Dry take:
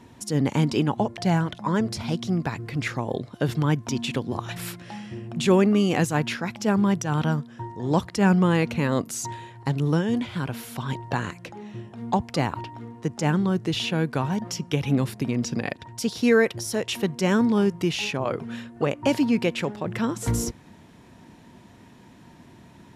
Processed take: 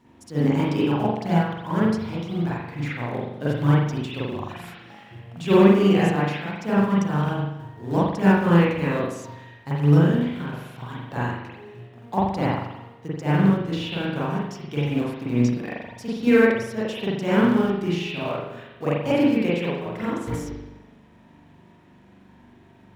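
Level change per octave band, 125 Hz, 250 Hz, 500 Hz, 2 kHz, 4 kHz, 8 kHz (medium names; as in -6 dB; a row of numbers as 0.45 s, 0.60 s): +2.5 dB, +2.0 dB, +2.5 dB, +1.0 dB, -3.0 dB, under -10 dB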